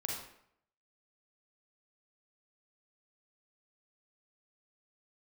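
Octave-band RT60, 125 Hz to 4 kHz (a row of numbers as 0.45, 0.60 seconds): 0.70, 0.70, 0.70, 0.70, 0.65, 0.50 seconds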